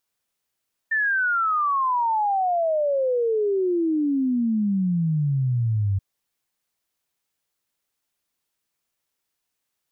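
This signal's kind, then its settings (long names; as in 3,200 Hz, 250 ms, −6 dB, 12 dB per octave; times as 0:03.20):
exponential sine sweep 1,800 Hz → 95 Hz 5.08 s −19 dBFS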